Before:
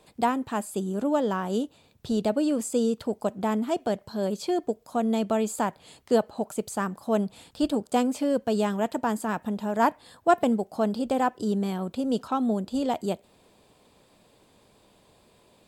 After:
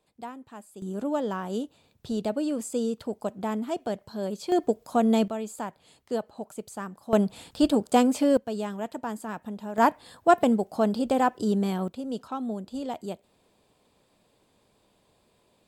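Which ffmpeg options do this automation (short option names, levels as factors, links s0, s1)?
-af "asetnsamples=n=441:p=0,asendcmd='0.82 volume volume -3.5dB;4.52 volume volume 3.5dB;5.28 volume volume -7.5dB;7.13 volume volume 3.5dB;8.37 volume volume -6.5dB;9.78 volume volume 1.5dB;11.88 volume volume -6.5dB',volume=0.178"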